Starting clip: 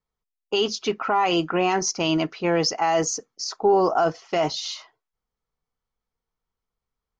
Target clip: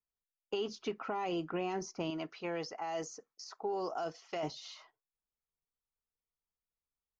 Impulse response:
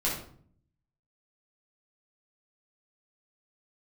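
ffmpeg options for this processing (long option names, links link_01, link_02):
-filter_complex "[0:a]agate=range=-6dB:threshold=-49dB:ratio=16:detection=peak,asettb=1/sr,asplit=3[link_01][link_02][link_03];[link_01]atrim=end=2.104[link_04];[link_02]atrim=start=2.1:end=4.43,asetpts=PTS-STARTPTS,afade=type=in:duration=0.004:curve=qsin,afade=type=out:start_time=2.326:duration=0.004:curve=qsin,lowshelf=frequency=450:gain=-10.5[link_05];[link_03]atrim=start=4.426[link_06];[link_04][link_05]acrossfade=duration=0.004:curve1=hsin:curve2=qsin[link_07];[link_07][link_06]acrossfade=duration=0.004:curve1=qsin:curve2=hsin,acrossover=split=650|2200[link_08][link_09][link_10];[link_08]acompressor=threshold=-25dB:ratio=4[link_11];[link_09]acompressor=threshold=-37dB:ratio=4[link_12];[link_10]acompressor=threshold=-41dB:ratio=4[link_13];[link_11][link_12][link_13]amix=inputs=3:normalize=0,volume=-9dB"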